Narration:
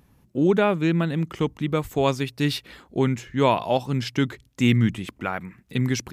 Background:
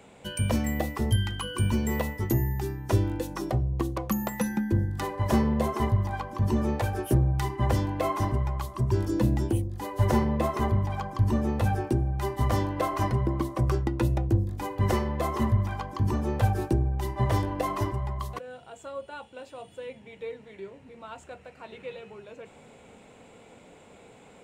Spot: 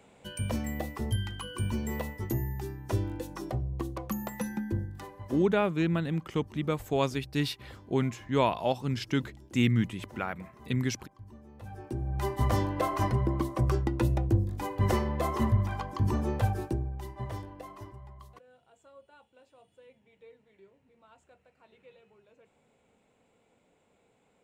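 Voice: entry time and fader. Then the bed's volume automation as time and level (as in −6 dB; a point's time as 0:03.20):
4.95 s, −6.0 dB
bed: 0:04.71 −6 dB
0:05.67 −25.5 dB
0:11.49 −25.5 dB
0:12.18 −1.5 dB
0:16.24 −1.5 dB
0:17.72 −17 dB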